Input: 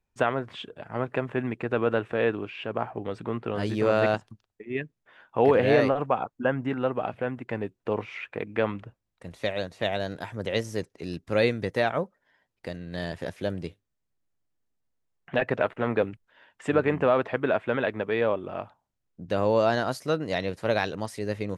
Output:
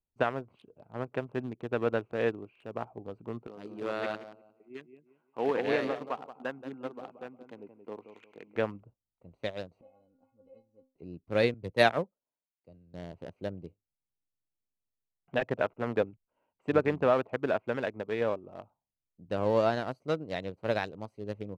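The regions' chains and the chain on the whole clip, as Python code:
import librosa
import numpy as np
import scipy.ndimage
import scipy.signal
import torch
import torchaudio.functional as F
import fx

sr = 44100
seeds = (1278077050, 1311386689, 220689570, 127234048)

y = fx.chain(x, sr, fx.highpass(hz=270.0, slope=12),
    fx.peak_eq(hz=580.0, db=-6.0, octaves=1.3),
    fx.echo_feedback(ms=177, feedback_pct=29, wet_db=-7), at=(3.47, 8.56))
y = fx.chain(y, sr, fx.lowpass(hz=1300.0, slope=6),
    fx.stiff_resonator(f0_hz=260.0, decay_s=0.29, stiffness=0.008), at=(9.81, 10.96))
y = fx.chain(y, sr, fx.high_shelf(hz=7400.0, db=8.5),
    fx.band_widen(depth_pct=100), at=(11.54, 12.94))
y = fx.wiener(y, sr, points=25)
y = fx.upward_expand(y, sr, threshold_db=-39.0, expansion=1.5)
y = y * 10.0 ** (-1.0 / 20.0)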